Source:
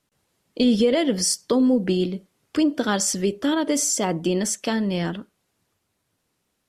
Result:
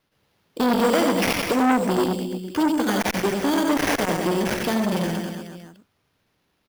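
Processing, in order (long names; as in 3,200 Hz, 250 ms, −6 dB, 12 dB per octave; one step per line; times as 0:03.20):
sample-rate reduction 7,900 Hz, jitter 0%
on a send: reverse bouncing-ball delay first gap 90 ms, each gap 1.15×, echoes 5
on the sum: saturating transformer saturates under 1,100 Hz
level +1.5 dB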